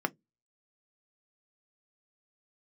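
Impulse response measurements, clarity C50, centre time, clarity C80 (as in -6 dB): 31.5 dB, 2 ms, 41.5 dB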